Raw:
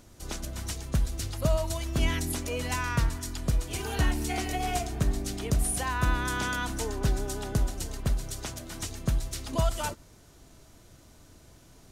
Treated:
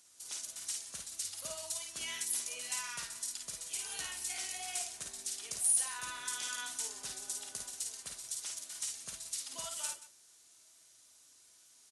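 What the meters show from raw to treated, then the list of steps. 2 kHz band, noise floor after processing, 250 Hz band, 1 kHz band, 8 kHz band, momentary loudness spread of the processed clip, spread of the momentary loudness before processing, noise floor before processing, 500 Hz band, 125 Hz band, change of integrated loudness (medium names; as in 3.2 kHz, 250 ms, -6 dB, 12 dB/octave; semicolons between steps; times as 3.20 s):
-10.5 dB, -63 dBFS, -28.5 dB, -15.0 dB, +2.0 dB, 6 LU, 8 LU, -55 dBFS, -20.0 dB, under -35 dB, -6.5 dB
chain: differentiator; multi-tap echo 42/53/180 ms -11/-4/-16 dB; AAC 96 kbps 24 kHz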